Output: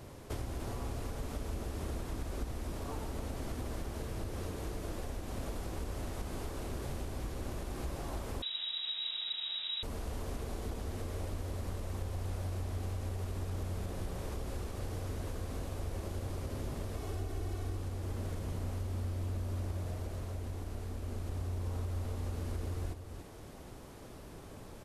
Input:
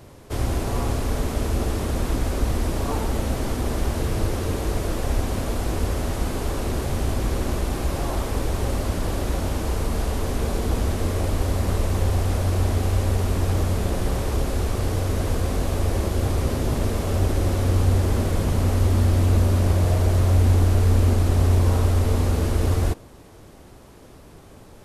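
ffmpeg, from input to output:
-filter_complex "[0:a]asettb=1/sr,asplit=3[s0][s1][s2];[s0]atrim=end=16.954[s3];[s1]atrim=start=16.95:end=17.76,asetpts=PTS-STARTPTS,afade=t=in:d=0.004:c=qsin,afade=t=out:st=0.806:d=0.004:c=qsin,aecho=1:1:2.7:0.6,atrim=end_sample=35721[s4];[s2]atrim=start=17.756[s5];[s3][s4]acrossfade=d=0.004:c1=hsin:c2=qsin[s6];[s6][s5]acrossfade=d=0.004:c1=qsin:c2=hsin,acompressor=threshold=0.0251:ratio=8,aecho=1:1:294:0.376,asettb=1/sr,asplit=3[s7][s8][s9];[s7]atrim=end=8.424[s10];[s8]atrim=start=8.42:end=9.83,asetpts=PTS-STARTPTS,afade=t=in:d=0.004:c=qsin,afade=t=out:st=1.406:d=0.004:c=qsin,lowpass=f=3300:t=q:w=0.5098,lowpass=f=3300:t=q:w=0.6013,lowpass=f=3300:t=q:w=0.9,lowpass=f=3300:t=q:w=2.563,afreqshift=-3900[s11];[s9]atrim=start=9.826[s12];[s10][s11]acrossfade=d=0.004:c1=hsin:c2=qsin[s13];[s13][s12]acrossfade=d=0.004:c1=qsin:c2=hsin,volume=0.631"

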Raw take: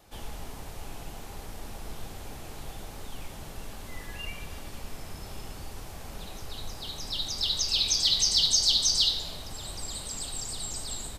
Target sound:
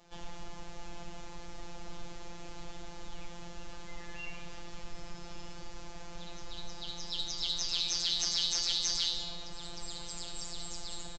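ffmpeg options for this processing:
-af "aresample=16000,asoftclip=type=tanh:threshold=0.0596,aresample=44100,afftfilt=real='hypot(re,im)*cos(PI*b)':imag='0':win_size=1024:overlap=0.75,aecho=1:1:195:0.211"

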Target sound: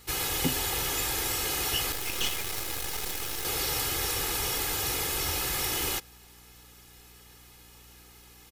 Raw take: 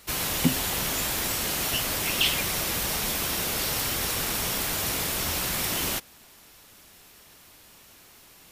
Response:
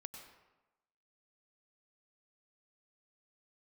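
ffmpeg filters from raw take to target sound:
-filter_complex "[0:a]aecho=1:1:2.4:0.69,aeval=exprs='val(0)+0.00224*(sin(2*PI*60*n/s)+sin(2*PI*2*60*n/s)/2+sin(2*PI*3*60*n/s)/3+sin(2*PI*4*60*n/s)/4+sin(2*PI*5*60*n/s)/5)':c=same,asettb=1/sr,asplit=3[s0][s1][s2];[s0]atrim=end=1.924[s3];[s1]atrim=start=1.92:end=3.45,asetpts=PTS-STARTPTS,afade=t=in:d=0.004:c=qsin,afade=t=out:st=1.526:d=0.004:c=qsin,aeval=exprs='max(val(0),0)':c=same[s4];[s2]atrim=start=3.446[s5];[s3][s4]acrossfade=d=0.004:c1=hsin:c2=qsin[s6];[s6][s5]acrossfade=d=0.004:c1=qsin:c2=hsin,volume=0.668"

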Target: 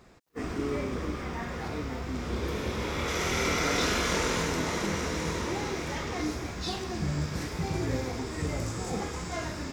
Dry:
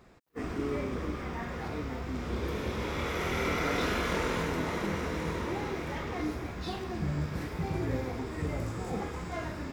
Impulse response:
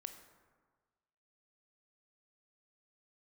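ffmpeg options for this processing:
-af "asetnsamples=n=441:p=0,asendcmd='3.08 equalizer g 11',equalizer=f=6300:t=o:w=1.4:g=5,volume=1.19"

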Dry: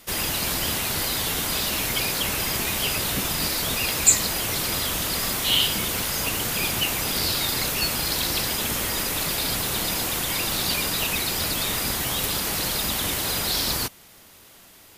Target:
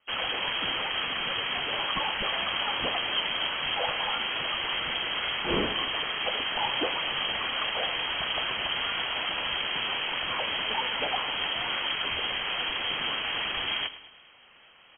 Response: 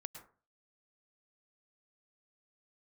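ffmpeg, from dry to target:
-af "afwtdn=0.02,areverse,acompressor=mode=upward:threshold=0.0141:ratio=2.5,areverse,aecho=1:1:107|214|321|428|535:0.178|0.0889|0.0445|0.0222|0.0111,lowpass=f=2800:t=q:w=0.5098,lowpass=f=2800:t=q:w=0.6013,lowpass=f=2800:t=q:w=0.9,lowpass=f=2800:t=q:w=2.563,afreqshift=-3300"

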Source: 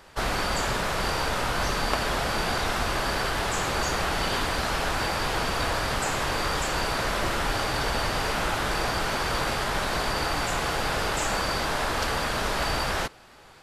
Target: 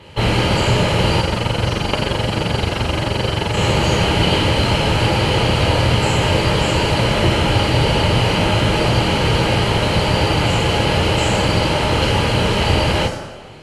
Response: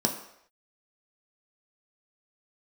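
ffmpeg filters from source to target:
-filter_complex "[0:a]asettb=1/sr,asplit=3[s0][s1][s2];[s0]atrim=end=1.204[s3];[s1]atrim=start=1.2:end=3.57,asetpts=PTS-STARTPTS,afade=t=in:d=0.004:c=qsin,afade=t=out:st=2.366:d=0.004:c=qsin,tremolo=f=23:d=0.889[s4];[s2]atrim=start=3.566[s5];[s3][s4]acrossfade=d=0.004:c1=hsin:c2=qsin[s6];[s6][s5]acrossfade=d=0.004:c1=qsin:c2=hsin[s7];[1:a]atrim=start_sample=2205,asetrate=23373,aresample=44100[s8];[s7][s8]afir=irnorm=-1:irlink=0,volume=0.596"

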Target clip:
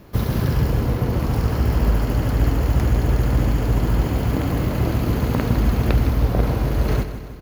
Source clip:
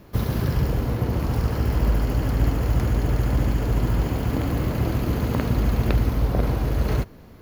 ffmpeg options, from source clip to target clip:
-af "aecho=1:1:159|318|477|636|795|954:0.282|0.147|0.0762|0.0396|0.0206|0.0107,volume=1.33"

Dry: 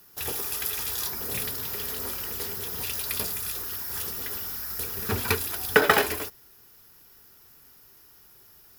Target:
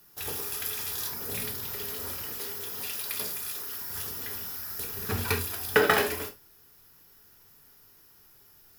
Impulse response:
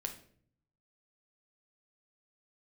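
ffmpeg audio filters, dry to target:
-filter_complex "[0:a]asettb=1/sr,asplit=3[s0][s1][s2];[s0]atrim=end=2.334[s3];[s1]atrim=start=2.33:end=3.81,asetpts=PTS-STARTPTS,afade=t=in:d=0.004:c=qsin,afade=t=out:st=1.476:d=0.004:c=qsin,highpass=f=260:p=1[s4];[s2]atrim=start=3.806[s5];[s3][s4]acrossfade=d=0.004:c1=hsin:c2=qsin[s6];[s6][s5]acrossfade=d=0.004:c1=qsin:c2=hsin[s7];[1:a]atrim=start_sample=2205,afade=t=out:st=0.14:d=0.01,atrim=end_sample=6615[s8];[s7][s8]afir=irnorm=-1:irlink=0,volume=0.794"

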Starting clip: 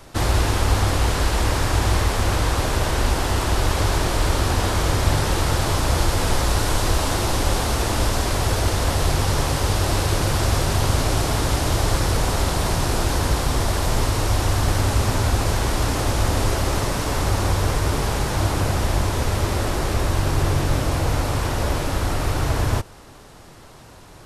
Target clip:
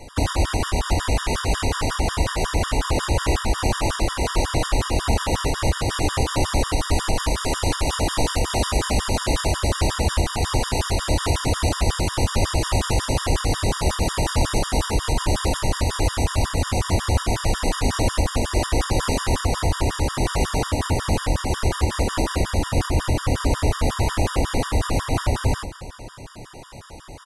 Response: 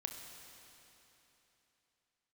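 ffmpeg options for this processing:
-filter_complex "[0:a]alimiter=limit=0.188:level=0:latency=1:release=178,asetrate=39249,aresample=44100,asplit=2[s0][s1];[s1]adelay=27,volume=0.355[s2];[s0][s2]amix=inputs=2:normalize=0,asplit=2[s3][s4];[1:a]atrim=start_sample=2205[s5];[s4][s5]afir=irnorm=-1:irlink=0,volume=0.75[s6];[s3][s6]amix=inputs=2:normalize=0,afftfilt=real='re*gt(sin(2*PI*5.5*pts/sr)*(1-2*mod(floor(b*sr/1024/950),2)),0)':imag='im*gt(sin(2*PI*5.5*pts/sr)*(1-2*mod(floor(b*sr/1024/950),2)),0)':win_size=1024:overlap=0.75,volume=1.26"

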